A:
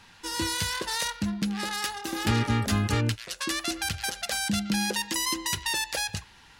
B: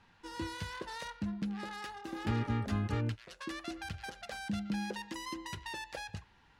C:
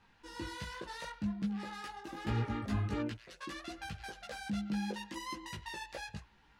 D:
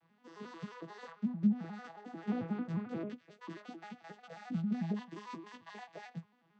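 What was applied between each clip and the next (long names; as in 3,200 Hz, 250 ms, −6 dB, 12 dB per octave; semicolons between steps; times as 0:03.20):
low-pass filter 1,400 Hz 6 dB per octave; level −7.5 dB
multi-voice chorus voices 4, 1.2 Hz, delay 17 ms, depth 3.4 ms; level +1.5 dB
vocoder with an arpeggio as carrier major triad, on E3, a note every 89 ms; level +1.5 dB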